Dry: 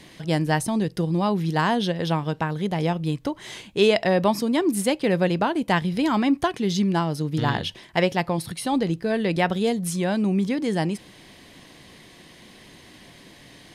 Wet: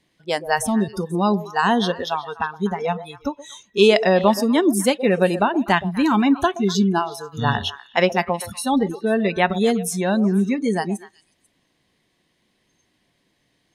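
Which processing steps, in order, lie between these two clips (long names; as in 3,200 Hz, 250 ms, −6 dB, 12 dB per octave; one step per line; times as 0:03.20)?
noise reduction from a noise print of the clip's start 24 dB
echo through a band-pass that steps 123 ms, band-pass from 530 Hz, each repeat 1.4 octaves, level −11 dB
level +4.5 dB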